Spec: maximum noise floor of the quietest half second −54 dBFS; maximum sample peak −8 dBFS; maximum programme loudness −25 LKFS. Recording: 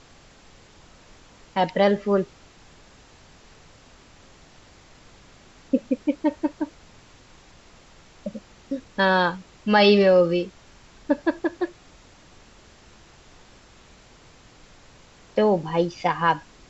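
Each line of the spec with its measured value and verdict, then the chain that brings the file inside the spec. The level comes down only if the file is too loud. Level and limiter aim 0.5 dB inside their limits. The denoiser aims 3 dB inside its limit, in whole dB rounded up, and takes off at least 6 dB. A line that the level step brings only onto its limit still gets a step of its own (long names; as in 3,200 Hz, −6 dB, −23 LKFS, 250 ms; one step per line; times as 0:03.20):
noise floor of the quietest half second −51 dBFS: out of spec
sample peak −5.0 dBFS: out of spec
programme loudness −22.5 LKFS: out of spec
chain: broadband denoise 6 dB, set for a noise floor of −51 dBFS
level −3 dB
brickwall limiter −8.5 dBFS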